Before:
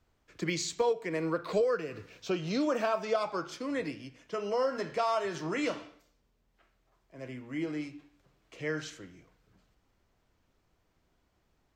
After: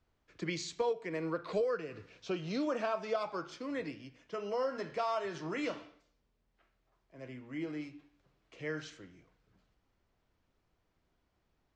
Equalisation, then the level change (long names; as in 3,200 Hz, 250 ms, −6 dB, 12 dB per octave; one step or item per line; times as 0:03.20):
low-pass filter 6,000 Hz 12 dB per octave
−4.5 dB